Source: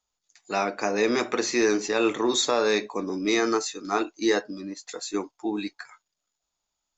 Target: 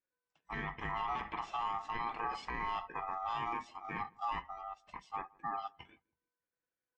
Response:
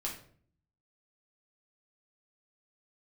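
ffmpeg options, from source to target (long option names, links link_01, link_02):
-filter_complex "[0:a]afftfilt=real='real(if(between(b,1,1008),(2*floor((b-1)/24)+1)*24-b,b),0)':imag='imag(if(between(b,1,1008),(2*floor((b-1)/24)+1)*24-b,b),0)*if(between(b,1,1008),-1,1)':win_size=2048:overlap=0.75,lowpass=1600,adynamicequalizer=threshold=0.0178:dfrequency=200:dqfactor=2.4:tfrequency=200:tqfactor=2.4:attack=5:release=100:ratio=0.375:range=1.5:mode=cutabove:tftype=bell,alimiter=limit=-20.5dB:level=0:latency=1:release=34,aeval=exprs='val(0)*sin(2*PI*1000*n/s)':channel_layout=same,asplit=2[link_01][link_02];[link_02]adelay=162,lowpass=frequency=810:poles=1,volume=-23dB,asplit=2[link_03][link_04];[link_04]adelay=162,lowpass=frequency=810:poles=1,volume=0.35[link_05];[link_03][link_05]amix=inputs=2:normalize=0[link_06];[link_01][link_06]amix=inputs=2:normalize=0,volume=-6dB"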